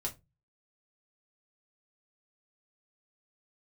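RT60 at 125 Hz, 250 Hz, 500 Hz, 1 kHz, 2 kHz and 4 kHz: 0.50, 0.35, 0.25, 0.20, 0.15, 0.15 seconds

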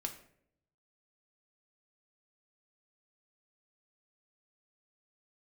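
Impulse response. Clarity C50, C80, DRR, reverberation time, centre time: 10.5 dB, 14.5 dB, 4.0 dB, 0.65 s, 12 ms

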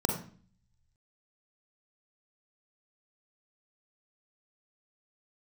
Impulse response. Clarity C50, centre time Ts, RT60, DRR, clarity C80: 6.0 dB, 27 ms, 0.45 s, 3.0 dB, 10.0 dB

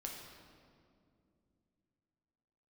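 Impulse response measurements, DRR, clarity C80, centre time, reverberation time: −1.0 dB, 4.0 dB, 73 ms, 2.4 s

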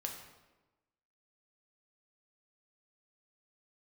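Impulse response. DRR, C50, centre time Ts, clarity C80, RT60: 1.5 dB, 5.5 dB, 34 ms, 7.5 dB, 1.1 s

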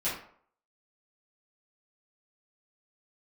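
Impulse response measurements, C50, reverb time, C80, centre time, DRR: 4.0 dB, 0.60 s, 9.0 dB, 40 ms, −12.5 dB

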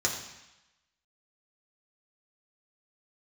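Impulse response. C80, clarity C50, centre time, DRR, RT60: 7.0 dB, 5.5 dB, 35 ms, −2.0 dB, 0.95 s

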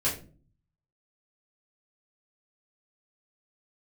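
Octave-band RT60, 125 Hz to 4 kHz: 0.90, 0.70, 0.50, 0.30, 0.30, 0.25 seconds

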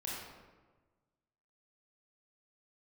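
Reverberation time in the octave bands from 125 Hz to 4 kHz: 1.7, 1.5, 1.4, 1.3, 1.0, 0.75 seconds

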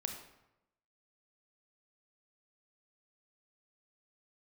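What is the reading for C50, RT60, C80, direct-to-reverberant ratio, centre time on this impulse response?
6.0 dB, 0.90 s, 8.5 dB, 4.0 dB, 26 ms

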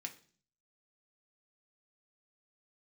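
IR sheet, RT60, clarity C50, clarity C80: 0.45 s, 14.5 dB, 19.0 dB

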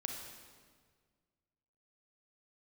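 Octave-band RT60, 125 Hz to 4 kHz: 2.2, 2.0, 1.8, 1.6, 1.5, 1.4 seconds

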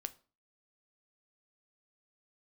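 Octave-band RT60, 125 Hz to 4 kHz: 0.45, 0.45, 0.35, 0.35, 0.30, 0.30 seconds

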